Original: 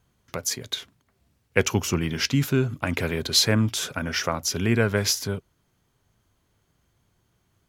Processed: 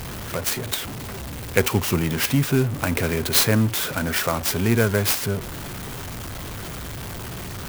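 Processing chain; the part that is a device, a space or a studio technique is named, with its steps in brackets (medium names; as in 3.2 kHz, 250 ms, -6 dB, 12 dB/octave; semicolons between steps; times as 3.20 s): early CD player with a faulty converter (jump at every zero crossing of -27.5 dBFS; sampling jitter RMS 0.044 ms); trim +1 dB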